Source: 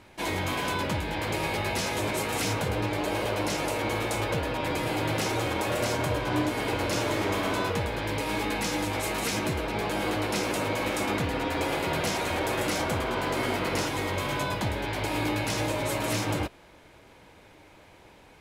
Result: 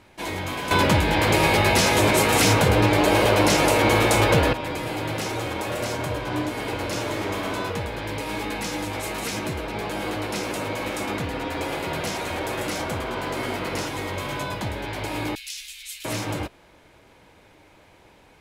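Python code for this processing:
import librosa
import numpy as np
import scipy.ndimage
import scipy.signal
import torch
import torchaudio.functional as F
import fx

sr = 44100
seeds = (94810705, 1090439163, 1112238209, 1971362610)

y = fx.cheby2_bandstop(x, sr, low_hz=140.0, high_hz=590.0, order=4, stop_db=80, at=(15.35, 16.05))
y = fx.edit(y, sr, fx.clip_gain(start_s=0.71, length_s=3.82, db=10.5), tone=tone)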